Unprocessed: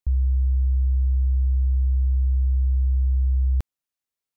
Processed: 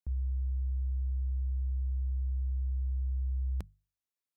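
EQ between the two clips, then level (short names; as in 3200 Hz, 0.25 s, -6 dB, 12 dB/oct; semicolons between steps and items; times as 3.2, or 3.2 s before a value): HPF 100 Hz 6 dB/oct; bell 190 Hz +7 dB 0.2 oct; notches 50/100/150 Hz; -6.5 dB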